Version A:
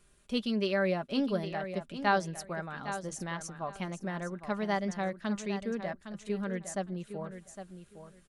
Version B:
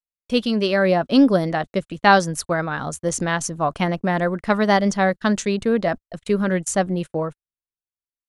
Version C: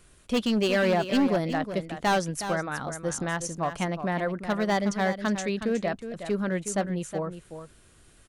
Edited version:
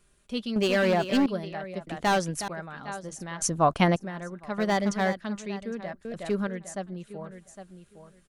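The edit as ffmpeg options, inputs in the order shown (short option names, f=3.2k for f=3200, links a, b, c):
-filter_complex "[2:a]asplit=4[a][b][c][d];[0:a]asplit=6[e][f][g][h][i][j];[e]atrim=end=0.562[k];[a]atrim=start=0.558:end=1.262[l];[f]atrim=start=1.258:end=1.872[m];[b]atrim=start=1.868:end=2.482[n];[g]atrim=start=2.478:end=3.422[o];[1:a]atrim=start=3.418:end=3.962[p];[h]atrim=start=3.958:end=4.582[q];[c]atrim=start=4.578:end=5.172[r];[i]atrim=start=5.168:end=6.052[s];[d]atrim=start=6.048:end=6.472[t];[j]atrim=start=6.468[u];[k][l]acrossfade=d=0.004:c1=hsin:c2=hsin[v];[v][m]acrossfade=d=0.004:c1=hsin:c2=hsin[w];[w][n]acrossfade=d=0.004:c1=hsin:c2=hsin[x];[x][o]acrossfade=d=0.004:c1=hsin:c2=hsin[y];[y][p]acrossfade=d=0.004:c1=hsin:c2=hsin[z];[z][q]acrossfade=d=0.004:c1=hsin:c2=hsin[aa];[aa][r]acrossfade=d=0.004:c1=hsin:c2=hsin[ab];[ab][s]acrossfade=d=0.004:c1=hsin:c2=hsin[ac];[ac][t]acrossfade=d=0.004:c1=hsin:c2=hsin[ad];[ad][u]acrossfade=d=0.004:c1=hsin:c2=hsin"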